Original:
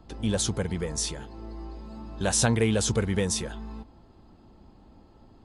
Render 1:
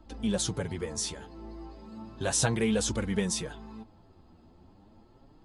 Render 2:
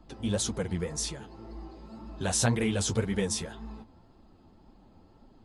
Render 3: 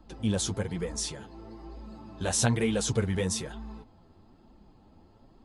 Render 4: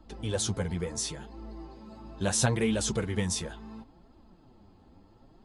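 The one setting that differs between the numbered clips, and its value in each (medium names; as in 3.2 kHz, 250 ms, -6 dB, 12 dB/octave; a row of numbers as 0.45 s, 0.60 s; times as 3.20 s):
flange, rate: 0.34 Hz, 1.9 Hz, 1.1 Hz, 0.72 Hz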